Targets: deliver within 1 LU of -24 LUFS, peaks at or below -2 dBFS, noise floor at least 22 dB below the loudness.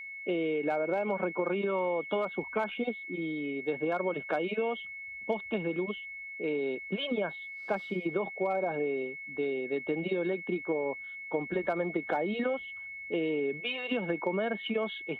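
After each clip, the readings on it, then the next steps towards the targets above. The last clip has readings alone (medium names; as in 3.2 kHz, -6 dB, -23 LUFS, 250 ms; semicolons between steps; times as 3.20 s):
steady tone 2.2 kHz; tone level -40 dBFS; loudness -32.5 LUFS; peak level -17.5 dBFS; loudness target -24.0 LUFS
-> band-stop 2.2 kHz, Q 30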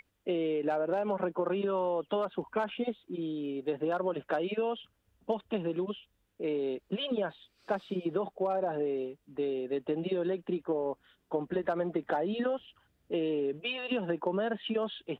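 steady tone not found; loudness -33.5 LUFS; peak level -18.5 dBFS; loudness target -24.0 LUFS
-> trim +9.5 dB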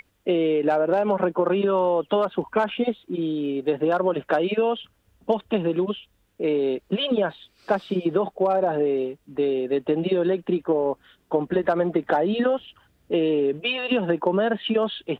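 loudness -24.0 LUFS; peak level -9.0 dBFS; noise floor -66 dBFS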